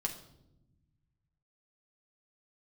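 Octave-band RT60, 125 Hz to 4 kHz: 2.4 s, 1.8 s, 1.1 s, 0.70 s, 0.55 s, 0.60 s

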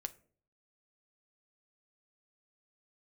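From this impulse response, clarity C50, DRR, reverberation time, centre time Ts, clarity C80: 19.5 dB, 9.5 dB, 0.50 s, 3 ms, 24.0 dB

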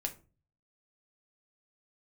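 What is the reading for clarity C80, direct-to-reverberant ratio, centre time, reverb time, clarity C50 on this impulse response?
21.0 dB, 3.0 dB, 8 ms, 0.35 s, 15.0 dB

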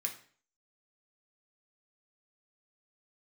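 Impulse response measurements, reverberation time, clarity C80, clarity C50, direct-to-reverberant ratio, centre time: 0.45 s, 14.5 dB, 10.5 dB, 1.5 dB, 14 ms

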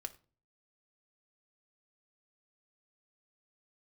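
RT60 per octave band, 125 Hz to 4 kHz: 0.65 s, 0.50 s, 0.40 s, 0.35 s, 0.30 s, 0.30 s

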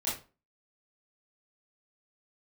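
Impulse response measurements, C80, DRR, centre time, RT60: 12.0 dB, -10.0 dB, 40 ms, 0.35 s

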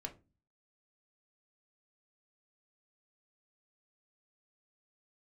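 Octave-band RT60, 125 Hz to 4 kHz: 0.60 s, 0.55 s, 0.30 s, 0.25 s, 0.20 s, 0.20 s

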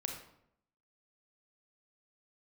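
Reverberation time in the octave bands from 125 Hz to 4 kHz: 0.85 s, 0.85 s, 0.75 s, 0.70 s, 0.60 s, 0.50 s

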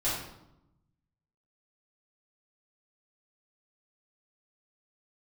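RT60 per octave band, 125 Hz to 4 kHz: 1.5 s, 1.2 s, 0.90 s, 0.85 s, 0.65 s, 0.60 s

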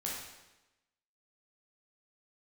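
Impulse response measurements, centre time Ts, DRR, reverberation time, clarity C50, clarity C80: 64 ms, -5.0 dB, 1.0 s, 0.5 dB, 4.0 dB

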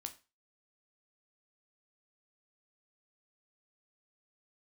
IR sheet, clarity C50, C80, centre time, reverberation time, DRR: 15.5 dB, 20.5 dB, 8 ms, 0.30 s, 6.0 dB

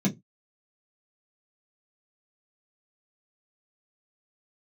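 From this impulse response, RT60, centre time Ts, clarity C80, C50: no single decay rate, 13 ms, 24.0 dB, 17.0 dB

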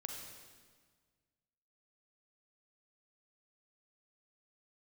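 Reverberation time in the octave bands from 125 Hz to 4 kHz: 2.1 s, 1.9 s, 1.6 s, 1.6 s, 1.5 s, 1.4 s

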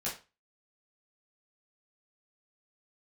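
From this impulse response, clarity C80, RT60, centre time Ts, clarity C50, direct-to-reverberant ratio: 14.5 dB, 0.30 s, 27 ms, 8.0 dB, -8.5 dB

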